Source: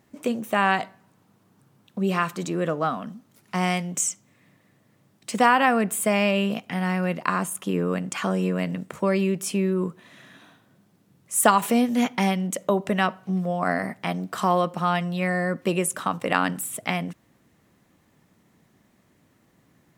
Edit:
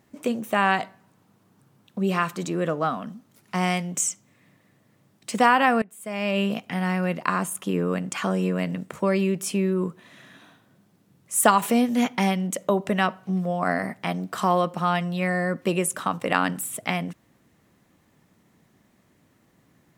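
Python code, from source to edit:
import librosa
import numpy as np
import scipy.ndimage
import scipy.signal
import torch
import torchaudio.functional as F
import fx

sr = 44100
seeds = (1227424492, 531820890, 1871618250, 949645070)

y = fx.edit(x, sr, fx.fade_in_from(start_s=5.82, length_s=0.58, curve='qua', floor_db=-23.0), tone=tone)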